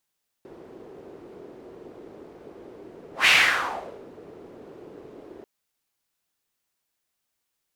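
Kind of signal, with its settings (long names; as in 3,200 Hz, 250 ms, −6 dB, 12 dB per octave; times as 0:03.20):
pass-by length 4.99 s, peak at 0:02.82, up 0.14 s, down 0.83 s, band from 390 Hz, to 2,500 Hz, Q 3, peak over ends 28 dB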